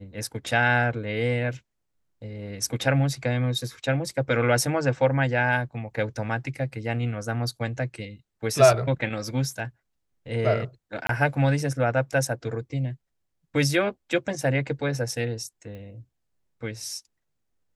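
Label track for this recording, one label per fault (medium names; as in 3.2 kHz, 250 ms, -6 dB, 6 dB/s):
11.070000	11.090000	dropout 23 ms
15.750000	15.750000	pop -30 dBFS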